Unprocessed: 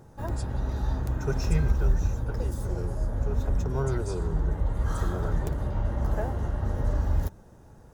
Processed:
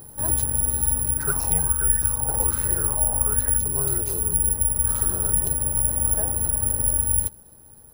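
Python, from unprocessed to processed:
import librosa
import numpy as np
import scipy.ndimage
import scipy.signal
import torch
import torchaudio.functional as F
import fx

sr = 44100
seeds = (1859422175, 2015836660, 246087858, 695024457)

y = fx.rider(x, sr, range_db=10, speed_s=0.5)
y = (np.kron(y[::4], np.eye(4)[0]) * 4)[:len(y)]
y = fx.bell_lfo(y, sr, hz=1.3, low_hz=780.0, high_hz=1800.0, db=16, at=(1.19, 3.57), fade=0.02)
y = F.gain(torch.from_numpy(y), -2.5).numpy()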